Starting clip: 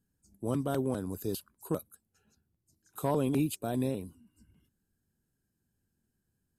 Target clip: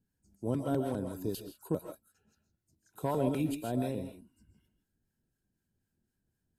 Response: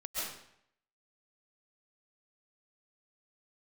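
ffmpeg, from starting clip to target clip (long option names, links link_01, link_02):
-filter_complex "[0:a]asuperstop=centerf=1200:order=4:qfactor=6.9,highshelf=frequency=5000:gain=-5.5,asplit=2[link_01][link_02];[1:a]atrim=start_sample=2205,afade=type=out:start_time=0.22:duration=0.01,atrim=end_sample=10143[link_03];[link_02][link_03]afir=irnorm=-1:irlink=0,volume=-3.5dB[link_04];[link_01][link_04]amix=inputs=2:normalize=0,acrossover=split=770[link_05][link_06];[link_05]aeval=exprs='val(0)*(1-0.5/2+0.5/2*cos(2*PI*4*n/s))':channel_layout=same[link_07];[link_06]aeval=exprs='val(0)*(1-0.5/2-0.5/2*cos(2*PI*4*n/s))':channel_layout=same[link_08];[link_07][link_08]amix=inputs=2:normalize=0,volume=-2dB"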